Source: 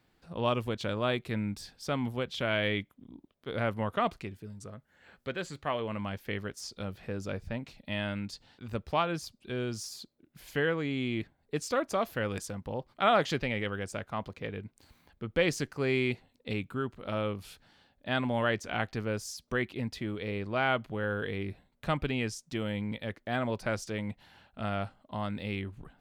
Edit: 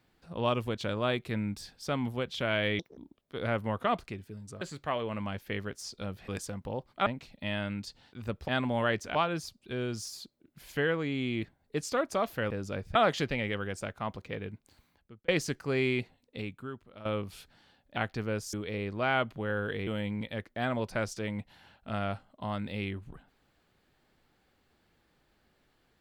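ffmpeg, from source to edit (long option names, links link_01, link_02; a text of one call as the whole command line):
ffmpeg -i in.wav -filter_complex "[0:a]asplit=15[link_01][link_02][link_03][link_04][link_05][link_06][link_07][link_08][link_09][link_10][link_11][link_12][link_13][link_14][link_15];[link_01]atrim=end=2.794[link_16];[link_02]atrim=start=2.79:end=3.1,asetpts=PTS-STARTPTS,asetrate=74970,aresample=44100[link_17];[link_03]atrim=start=3.096:end=4.742[link_18];[link_04]atrim=start=5.398:end=7.072[link_19];[link_05]atrim=start=12.288:end=13.072[link_20];[link_06]atrim=start=7.518:end=8.942[link_21];[link_07]atrim=start=18.078:end=18.752[link_22];[link_08]atrim=start=8.938:end=12.292[link_23];[link_09]atrim=start=7.068:end=7.522[link_24];[link_10]atrim=start=13.068:end=15.4,asetpts=PTS-STARTPTS,afade=type=out:start_time=1.572:duration=0.76[link_25];[link_11]atrim=start=15.4:end=17.17,asetpts=PTS-STARTPTS,afade=type=in:duration=0.004:curve=hsin,afade=type=out:start_time=0.6:duration=1.17:silence=0.177828[link_26];[link_12]atrim=start=17.17:end=18.082,asetpts=PTS-STARTPTS,afade=type=in:duration=0.004:curve=hsin:silence=0.177828[link_27];[link_13]atrim=start=18.748:end=19.322[link_28];[link_14]atrim=start=20.068:end=21.412[link_29];[link_15]atrim=start=22.578[link_30];[link_16][link_17]acrossfade=duration=0.004:curve1=hsin:curve2=hsin[link_31];[link_31][link_18]acrossfade=duration=0.004:curve1=hsin:curve2=hsin[link_32];[link_32][link_19]acrossfade=duration=0.004:curve1=hsin:curve2=hsin[link_33];[link_33][link_20]acrossfade=duration=0.004:curve1=hsin:curve2=hsin[link_34];[link_34][link_21]acrossfade=duration=0.004:curve1=hsin:curve2=hsin[link_35];[link_35][link_22]acrossfade=duration=0.004:curve1=hsin:curve2=hsin[link_36];[link_36][link_23]acrossfade=duration=0.004:curve1=hsin:curve2=hsin[link_37];[link_37][link_24]acrossfade=duration=0.004:curve1=hsin:curve2=hsin[link_38];[link_25][link_26][link_27]concat=n=3:v=0:a=1[link_39];[link_38][link_39]acrossfade=duration=0.004:curve1=hsin:curve2=hsin[link_40];[link_40][link_28]acrossfade=duration=0.004:curve1=hsin:curve2=hsin[link_41];[link_41][link_29]acrossfade=duration=0.004:curve1=hsin:curve2=hsin[link_42];[link_42][link_30]acrossfade=duration=0.004:curve1=hsin:curve2=hsin" out.wav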